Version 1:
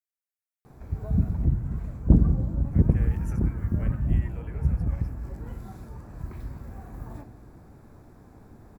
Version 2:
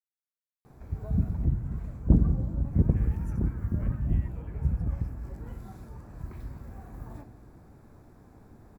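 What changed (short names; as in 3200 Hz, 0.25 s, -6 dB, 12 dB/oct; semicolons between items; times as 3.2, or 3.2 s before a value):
speech -8.5 dB; background -3.0 dB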